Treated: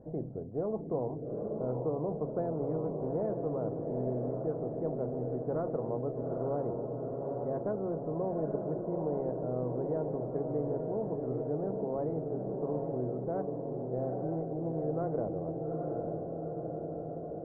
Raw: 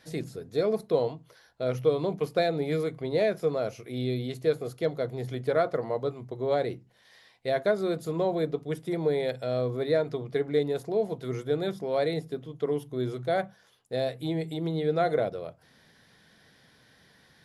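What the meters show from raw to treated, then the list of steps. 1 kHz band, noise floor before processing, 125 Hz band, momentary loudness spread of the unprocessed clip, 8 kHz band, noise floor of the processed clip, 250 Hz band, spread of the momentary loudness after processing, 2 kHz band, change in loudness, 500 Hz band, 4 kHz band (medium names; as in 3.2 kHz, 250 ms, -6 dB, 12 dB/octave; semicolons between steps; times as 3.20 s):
-5.5 dB, -61 dBFS, -2.0 dB, 7 LU, no reading, -40 dBFS, -2.0 dB, 4 LU, under -20 dB, -5.5 dB, -5.5 dB, under -40 dB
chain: inverse Chebyshev low-pass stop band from 2.7 kHz, stop band 70 dB; echo that smears into a reverb 844 ms, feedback 57%, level -6 dB; spectrum-flattening compressor 2:1; trim -8 dB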